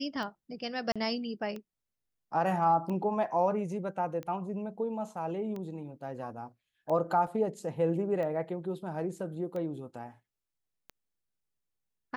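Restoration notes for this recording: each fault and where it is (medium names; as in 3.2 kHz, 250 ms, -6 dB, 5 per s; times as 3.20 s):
tick 45 rpm -27 dBFS
0.92–0.96 s: dropout 36 ms
7.27 s: dropout 4.1 ms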